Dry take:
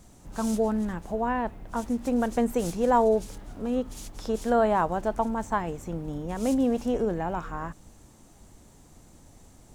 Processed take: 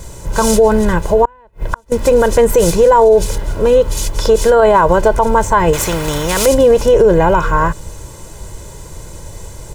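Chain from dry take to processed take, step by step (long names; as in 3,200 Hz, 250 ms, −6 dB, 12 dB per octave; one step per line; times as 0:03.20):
comb filter 2 ms, depth 82%
0:01.25–0:01.92: gate with flip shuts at −23 dBFS, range −36 dB
boost into a limiter +20 dB
0:05.73–0:06.46: every bin compressed towards the loudest bin 2 to 1
level −1 dB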